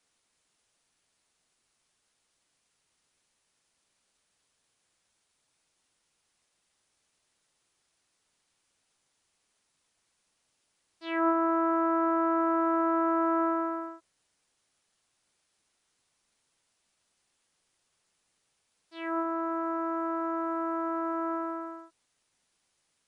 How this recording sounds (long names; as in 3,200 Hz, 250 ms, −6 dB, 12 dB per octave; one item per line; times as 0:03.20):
a quantiser's noise floor 12 bits, dither triangular
MP3